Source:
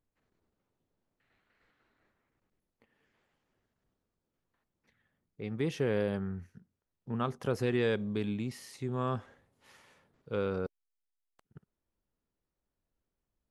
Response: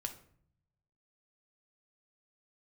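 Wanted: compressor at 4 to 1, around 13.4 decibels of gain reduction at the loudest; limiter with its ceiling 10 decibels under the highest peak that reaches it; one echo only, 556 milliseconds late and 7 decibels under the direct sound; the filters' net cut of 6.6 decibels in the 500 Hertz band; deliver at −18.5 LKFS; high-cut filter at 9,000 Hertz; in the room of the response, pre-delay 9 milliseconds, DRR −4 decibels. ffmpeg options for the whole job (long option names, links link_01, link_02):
-filter_complex "[0:a]lowpass=9000,equalizer=frequency=500:width_type=o:gain=-8,acompressor=threshold=-45dB:ratio=4,alimiter=level_in=17dB:limit=-24dB:level=0:latency=1,volume=-17dB,aecho=1:1:556:0.447,asplit=2[link_01][link_02];[1:a]atrim=start_sample=2205,adelay=9[link_03];[link_02][link_03]afir=irnorm=-1:irlink=0,volume=5dB[link_04];[link_01][link_04]amix=inputs=2:normalize=0,volume=27.5dB"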